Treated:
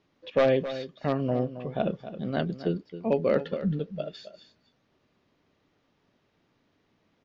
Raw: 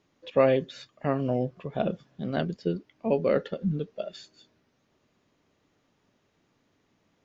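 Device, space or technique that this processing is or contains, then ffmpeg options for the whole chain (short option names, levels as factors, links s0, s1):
synthesiser wavefolder: -af "aeval=exprs='0.211*(abs(mod(val(0)/0.211+3,4)-2)-1)':c=same,lowpass=f=5500:w=0.5412,lowpass=f=5500:w=1.3066,aecho=1:1:269:0.237"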